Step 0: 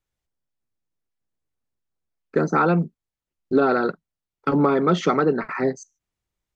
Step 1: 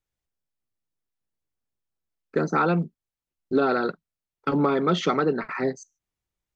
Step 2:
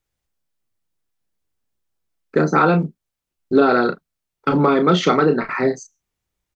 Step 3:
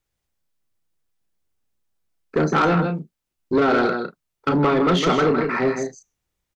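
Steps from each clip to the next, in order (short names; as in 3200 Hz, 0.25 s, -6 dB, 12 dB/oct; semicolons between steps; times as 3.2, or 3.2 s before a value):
dynamic EQ 3500 Hz, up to +6 dB, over -44 dBFS, Q 1.2; gain -3.5 dB
doubler 33 ms -7.5 dB; gain +6.5 dB
echo 0.159 s -8 dB; soft clip -12.5 dBFS, distortion -13 dB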